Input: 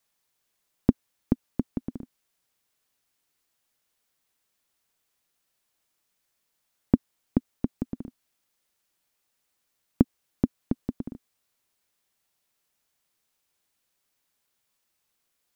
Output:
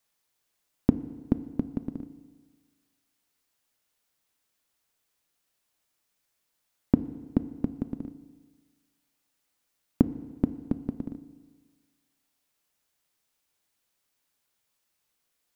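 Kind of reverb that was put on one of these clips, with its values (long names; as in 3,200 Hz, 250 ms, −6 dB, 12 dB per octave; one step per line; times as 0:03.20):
feedback delay network reverb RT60 1.5 s, low-frequency decay 0.95×, high-frequency decay 0.95×, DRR 12 dB
level −1 dB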